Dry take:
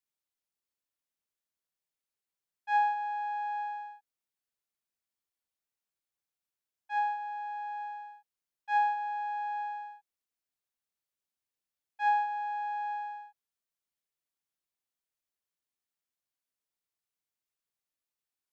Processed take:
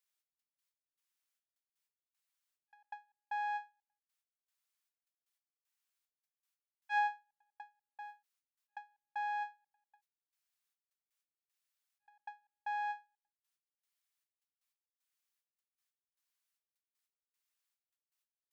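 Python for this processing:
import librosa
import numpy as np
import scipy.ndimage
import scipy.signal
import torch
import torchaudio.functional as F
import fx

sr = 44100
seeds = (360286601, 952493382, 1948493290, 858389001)

y = scipy.signal.sosfilt(scipy.signal.butter(2, 1100.0, 'highpass', fs=sr, output='sos'), x)
y = fx.step_gate(y, sr, bpm=154, pattern='xxx.x.xx..xx', floor_db=-60.0, edge_ms=4.5)
y = fx.end_taper(y, sr, db_per_s=260.0)
y = y * 10.0 ** (3.5 / 20.0)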